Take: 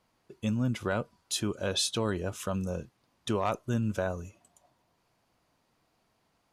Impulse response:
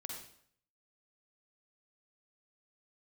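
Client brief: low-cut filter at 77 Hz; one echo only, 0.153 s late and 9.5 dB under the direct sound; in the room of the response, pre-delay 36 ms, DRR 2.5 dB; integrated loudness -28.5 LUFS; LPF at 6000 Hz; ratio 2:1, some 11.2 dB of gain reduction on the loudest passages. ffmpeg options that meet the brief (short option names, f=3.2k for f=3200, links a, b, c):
-filter_complex "[0:a]highpass=77,lowpass=6k,acompressor=threshold=-46dB:ratio=2,aecho=1:1:153:0.335,asplit=2[a][b];[1:a]atrim=start_sample=2205,adelay=36[c];[b][c]afir=irnorm=-1:irlink=0,volume=0dB[d];[a][d]amix=inputs=2:normalize=0,volume=12dB"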